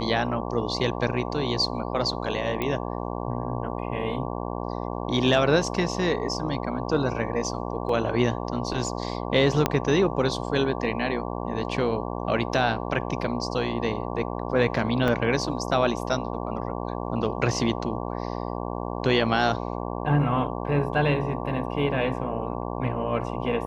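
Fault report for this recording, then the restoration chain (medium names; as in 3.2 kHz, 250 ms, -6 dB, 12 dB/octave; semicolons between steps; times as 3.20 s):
buzz 60 Hz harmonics 19 -31 dBFS
2.62 s: pop -14 dBFS
7.89 s: dropout 3.4 ms
9.66 s: pop -6 dBFS
15.08 s: dropout 2.3 ms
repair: de-click; de-hum 60 Hz, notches 19; interpolate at 7.89 s, 3.4 ms; interpolate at 15.08 s, 2.3 ms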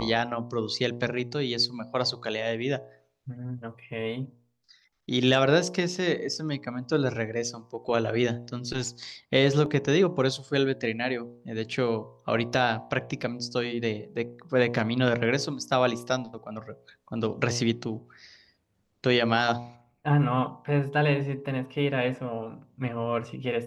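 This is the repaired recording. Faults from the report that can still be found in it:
9.66 s: pop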